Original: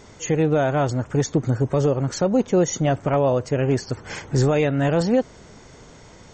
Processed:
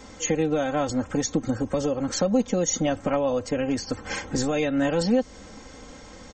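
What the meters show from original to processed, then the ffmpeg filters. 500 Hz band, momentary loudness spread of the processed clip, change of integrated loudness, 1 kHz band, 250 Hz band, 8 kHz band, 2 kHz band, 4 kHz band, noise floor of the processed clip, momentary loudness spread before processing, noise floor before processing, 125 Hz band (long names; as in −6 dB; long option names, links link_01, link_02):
−4.5 dB, 21 LU, −4.0 dB, −4.0 dB, −2.0 dB, +2.5 dB, −2.0 dB, +1.5 dB, −45 dBFS, 6 LU, −46 dBFS, −11.0 dB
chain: -filter_complex "[0:a]acrossover=split=130|3000[link_01][link_02][link_03];[link_02]acompressor=threshold=-23dB:ratio=6[link_04];[link_01][link_04][link_03]amix=inputs=3:normalize=0,aecho=1:1:3.8:0.8"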